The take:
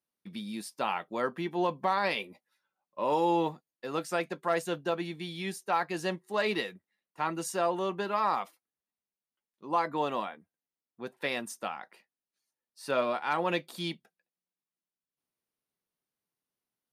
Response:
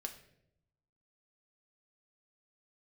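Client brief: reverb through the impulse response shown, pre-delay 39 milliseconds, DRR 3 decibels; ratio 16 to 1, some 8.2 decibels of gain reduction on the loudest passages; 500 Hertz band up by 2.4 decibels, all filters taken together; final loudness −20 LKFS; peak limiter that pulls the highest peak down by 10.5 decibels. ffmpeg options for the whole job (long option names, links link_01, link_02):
-filter_complex "[0:a]equalizer=frequency=500:width_type=o:gain=3,acompressor=threshold=-29dB:ratio=16,alimiter=level_in=4.5dB:limit=-24dB:level=0:latency=1,volume=-4.5dB,asplit=2[link_01][link_02];[1:a]atrim=start_sample=2205,adelay=39[link_03];[link_02][link_03]afir=irnorm=-1:irlink=0,volume=-1dB[link_04];[link_01][link_04]amix=inputs=2:normalize=0,volume=18dB"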